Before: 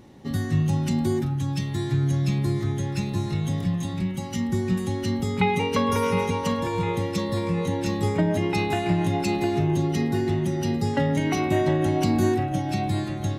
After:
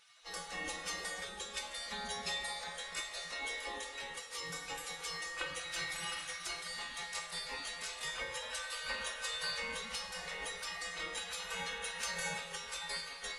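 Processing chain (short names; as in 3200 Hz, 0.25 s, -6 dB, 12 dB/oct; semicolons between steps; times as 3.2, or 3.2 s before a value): spectral gate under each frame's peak -25 dB weak; resonator 170 Hz, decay 0.24 s, harmonics odd, mix 90%; Schroeder reverb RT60 1.7 s, combs from 32 ms, DRR 9.5 dB; gain +14 dB; AAC 48 kbps 24000 Hz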